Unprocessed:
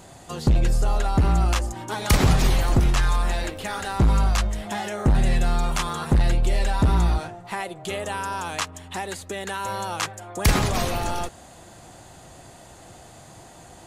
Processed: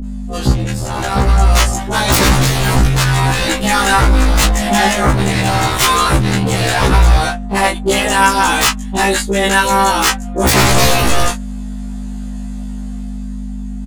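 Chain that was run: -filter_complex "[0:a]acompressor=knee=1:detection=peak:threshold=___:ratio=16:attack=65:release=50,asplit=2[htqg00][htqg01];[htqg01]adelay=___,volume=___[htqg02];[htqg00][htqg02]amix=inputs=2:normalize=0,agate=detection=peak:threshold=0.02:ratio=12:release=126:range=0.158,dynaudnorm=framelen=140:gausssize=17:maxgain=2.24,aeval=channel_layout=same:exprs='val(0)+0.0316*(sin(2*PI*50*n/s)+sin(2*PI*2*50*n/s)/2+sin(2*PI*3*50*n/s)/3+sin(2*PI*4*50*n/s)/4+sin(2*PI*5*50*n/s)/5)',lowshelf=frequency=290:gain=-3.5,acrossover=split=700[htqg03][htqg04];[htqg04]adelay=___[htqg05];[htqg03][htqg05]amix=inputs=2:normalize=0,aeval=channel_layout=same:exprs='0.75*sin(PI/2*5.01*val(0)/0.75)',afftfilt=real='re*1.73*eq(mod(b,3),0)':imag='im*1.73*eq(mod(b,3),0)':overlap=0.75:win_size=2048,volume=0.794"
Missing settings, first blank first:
0.0794, 24, 0.422, 40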